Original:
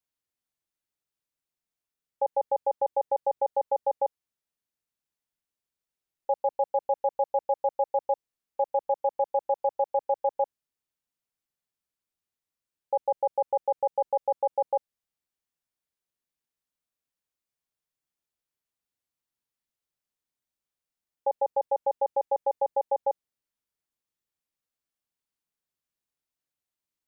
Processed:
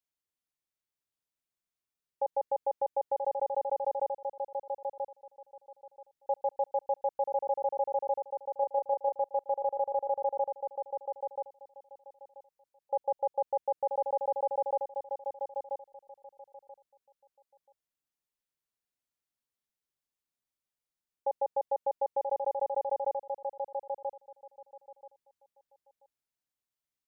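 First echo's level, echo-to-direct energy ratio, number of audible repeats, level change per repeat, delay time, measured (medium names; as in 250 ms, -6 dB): -5.5 dB, -5.5 dB, 2, -15.0 dB, 983 ms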